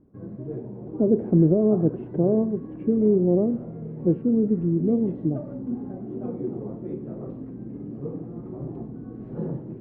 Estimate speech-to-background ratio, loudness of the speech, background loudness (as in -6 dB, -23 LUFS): 12.5 dB, -22.5 LUFS, -35.0 LUFS